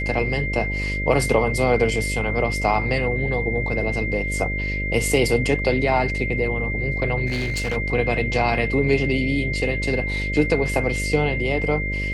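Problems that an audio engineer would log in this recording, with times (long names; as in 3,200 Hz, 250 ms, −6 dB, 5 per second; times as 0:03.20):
mains buzz 50 Hz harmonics 12 −27 dBFS
whistle 2,100 Hz −26 dBFS
0:07.26–0:07.77: clipping −20.5 dBFS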